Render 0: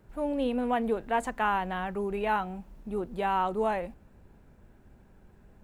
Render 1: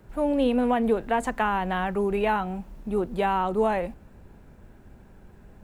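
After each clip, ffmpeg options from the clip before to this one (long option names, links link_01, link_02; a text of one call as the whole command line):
ffmpeg -i in.wav -filter_complex "[0:a]acrossover=split=370[link_01][link_02];[link_02]acompressor=threshold=-28dB:ratio=6[link_03];[link_01][link_03]amix=inputs=2:normalize=0,volume=6.5dB" out.wav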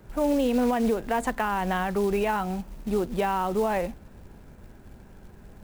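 ffmpeg -i in.wav -af "alimiter=limit=-18.5dB:level=0:latency=1:release=140,acrusher=bits=5:mode=log:mix=0:aa=0.000001,volume=2dB" out.wav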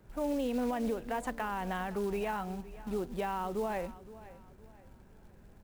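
ffmpeg -i in.wav -af "aecho=1:1:515|1030|1545:0.133|0.048|0.0173,volume=-9dB" out.wav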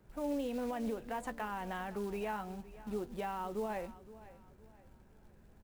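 ffmpeg -i in.wav -filter_complex "[0:a]asplit=2[link_01][link_02];[link_02]adelay=14,volume=-12dB[link_03];[link_01][link_03]amix=inputs=2:normalize=0,volume=-4.5dB" out.wav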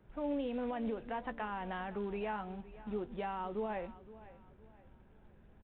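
ffmpeg -i in.wav -af "aresample=8000,aresample=44100" out.wav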